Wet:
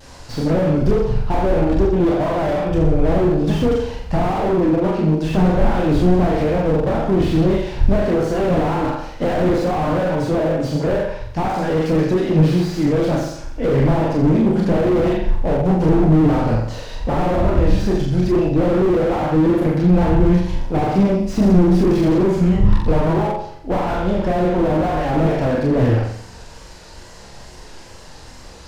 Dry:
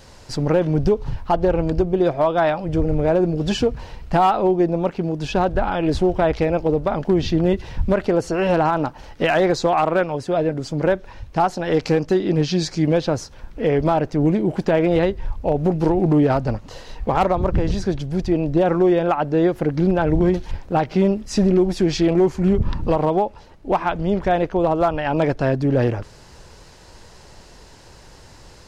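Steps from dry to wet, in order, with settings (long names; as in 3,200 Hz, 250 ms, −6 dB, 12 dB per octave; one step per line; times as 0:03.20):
notch filter 400 Hz, Q 12
multi-voice chorus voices 6, 0.39 Hz, delay 30 ms, depth 4.5 ms
mains-hum notches 50/100/150/200 Hz
pitch vibrato 2.3 Hz 78 cents
flutter between parallel walls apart 7.6 metres, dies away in 0.63 s
slew-rate limiting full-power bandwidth 37 Hz
level +6.5 dB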